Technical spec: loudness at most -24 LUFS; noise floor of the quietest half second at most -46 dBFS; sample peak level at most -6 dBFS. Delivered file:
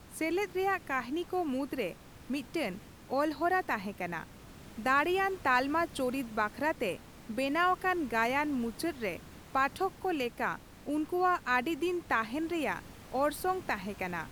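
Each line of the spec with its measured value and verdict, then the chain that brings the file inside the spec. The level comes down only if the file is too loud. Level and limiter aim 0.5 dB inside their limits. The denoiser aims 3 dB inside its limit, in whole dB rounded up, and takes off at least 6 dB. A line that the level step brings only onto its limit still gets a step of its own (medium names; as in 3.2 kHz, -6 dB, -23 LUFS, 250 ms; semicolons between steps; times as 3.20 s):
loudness -32.5 LUFS: pass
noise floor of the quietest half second -51 dBFS: pass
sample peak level -15.0 dBFS: pass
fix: none needed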